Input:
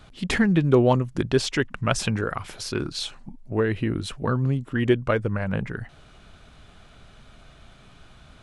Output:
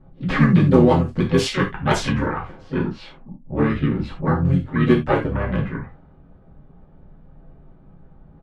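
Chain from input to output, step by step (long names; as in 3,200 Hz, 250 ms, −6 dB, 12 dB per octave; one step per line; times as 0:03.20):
low-pass that shuts in the quiet parts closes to 550 Hz, open at −16.5 dBFS
pitch-shifted copies added −7 semitones −1 dB, +4 semitones −8 dB
in parallel at −7.5 dB: wave folding −9 dBFS
on the sum: reverb whose tail is shaped and stops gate 110 ms falling, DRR −2 dB
level −6 dB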